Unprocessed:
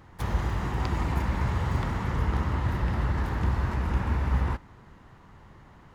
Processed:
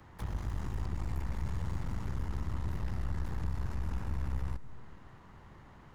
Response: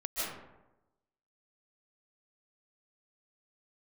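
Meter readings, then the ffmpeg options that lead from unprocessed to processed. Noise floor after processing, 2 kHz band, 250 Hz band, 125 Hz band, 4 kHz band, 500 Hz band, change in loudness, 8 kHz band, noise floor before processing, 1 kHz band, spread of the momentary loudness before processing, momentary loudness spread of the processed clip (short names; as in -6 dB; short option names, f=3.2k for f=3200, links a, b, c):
-55 dBFS, -14.5 dB, -10.5 dB, -9.0 dB, -12.0 dB, -13.0 dB, -9.5 dB, n/a, -53 dBFS, -14.5 dB, 2 LU, 18 LU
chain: -filter_complex "[0:a]acrossover=split=120|270|590|5000[a][b][c][d][e];[a]acompressor=threshold=-30dB:ratio=4[f];[b]acompressor=threshold=-46dB:ratio=4[g];[c]acompressor=threshold=-54dB:ratio=4[h];[d]acompressor=threshold=-50dB:ratio=4[i];[e]acompressor=threshold=-58dB:ratio=4[j];[f][g][h][i][j]amix=inputs=5:normalize=0,aeval=exprs='(tanh(31.6*val(0)+0.65)-tanh(0.65))/31.6':c=same,asplit=2[k][l];[1:a]atrim=start_sample=2205[m];[l][m]afir=irnorm=-1:irlink=0,volume=-21dB[n];[k][n]amix=inputs=2:normalize=0"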